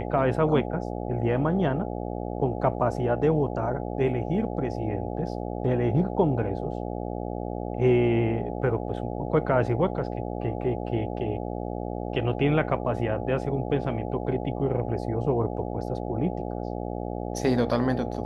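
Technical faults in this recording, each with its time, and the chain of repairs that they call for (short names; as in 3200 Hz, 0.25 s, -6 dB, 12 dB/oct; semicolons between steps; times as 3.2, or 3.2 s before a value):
buzz 60 Hz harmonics 14 -32 dBFS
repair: de-hum 60 Hz, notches 14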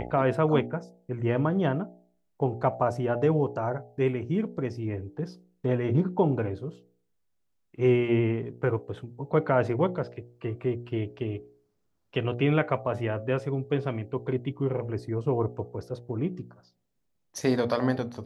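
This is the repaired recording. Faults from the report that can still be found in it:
none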